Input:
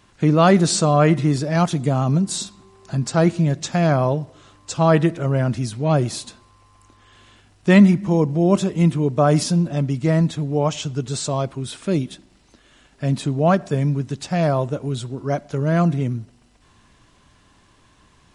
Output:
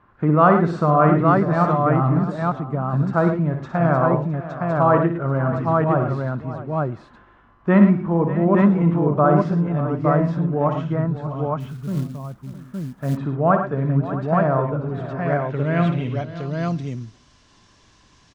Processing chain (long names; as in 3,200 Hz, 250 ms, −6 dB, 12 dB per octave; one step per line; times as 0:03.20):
0:10.85–0:12.27: gain on a spectral selection 270–9,400 Hz −12 dB
on a send: multi-tap delay 59/106/114/589/661/865 ms −8/−11/−15/−14.5/−16/−3 dB
on the sum: low-pass filter sweep 1,300 Hz → 5,800 Hz, 0:14.95–0:16.88
0:11.60–0:13.17: log-companded quantiser 6 bits
level −3.5 dB